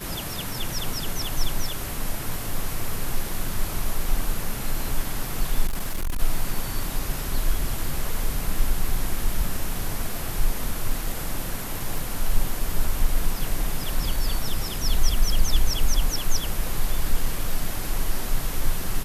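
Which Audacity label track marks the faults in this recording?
5.660000	6.200000	clipped -21.5 dBFS
11.980000	11.980000	pop

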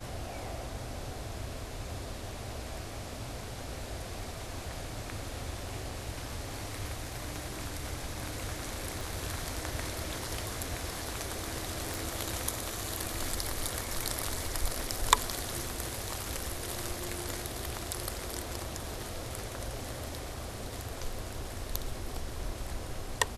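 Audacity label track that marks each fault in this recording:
9.010000	9.010000	pop
11.940000	11.940000	pop

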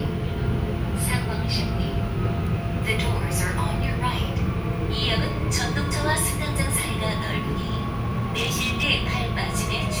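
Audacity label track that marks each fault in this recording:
7.610000	8.840000	clipped -20.5 dBFS

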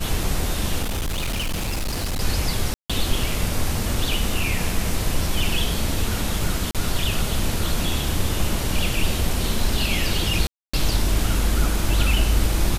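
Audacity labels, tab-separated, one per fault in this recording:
0.820000	2.210000	clipped -21.5 dBFS
2.740000	2.900000	gap 0.156 s
6.710000	6.750000	gap 37 ms
10.470000	10.730000	gap 0.265 s

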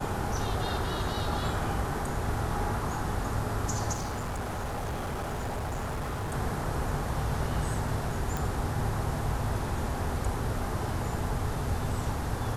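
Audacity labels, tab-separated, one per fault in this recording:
3.930000	6.340000	clipped -30 dBFS
8.370000	8.370000	pop

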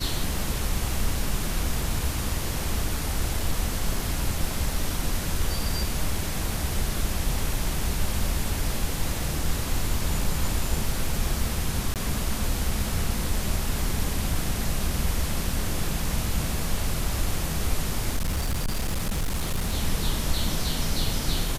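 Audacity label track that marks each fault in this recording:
11.940000	11.960000	gap 18 ms
18.160000	19.750000	clipped -22 dBFS

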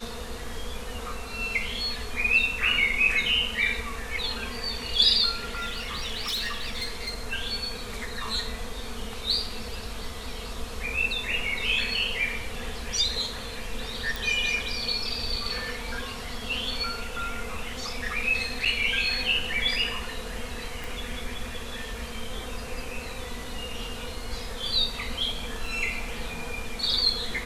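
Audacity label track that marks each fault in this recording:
5.540000	7.150000	clipped -26 dBFS
14.160000	14.160000	pop
18.650000	18.660000	gap 6.3 ms
20.840000	20.840000	pop
25.660000	25.660000	gap 2.8 ms

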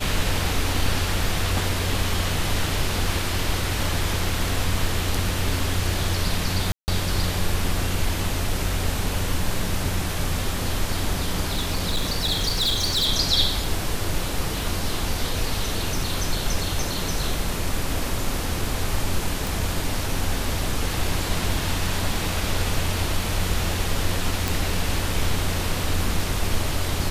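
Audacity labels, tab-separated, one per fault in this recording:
6.720000	6.880000	gap 0.159 s
11.470000	13.070000	clipped -18 dBFS
19.470000	19.470000	pop
24.480000	24.480000	pop

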